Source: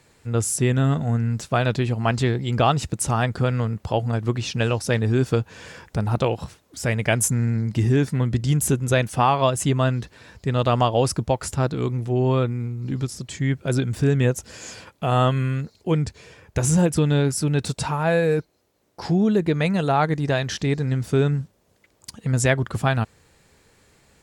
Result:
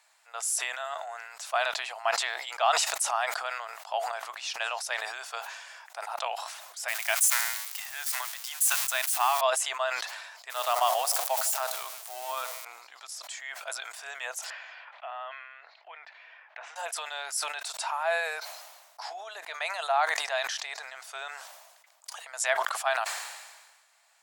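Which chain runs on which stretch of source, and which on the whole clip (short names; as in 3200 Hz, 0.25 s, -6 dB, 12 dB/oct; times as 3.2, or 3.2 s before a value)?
6.88–9.41 switching spikes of -20 dBFS + HPF 840 Hz
10.5–12.65 switching spikes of -21 dBFS + dark delay 77 ms, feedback 61%, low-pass 800 Hz, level -12.5 dB
14.5–16.76 LPF 3200 Hz 24 dB/oct + bell 1900 Hz +5.5 dB 0.6 oct + compressor 8:1, threshold -26 dBFS
whole clip: Chebyshev high-pass 660 Hz, order 5; sustainer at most 42 dB/s; gain -4 dB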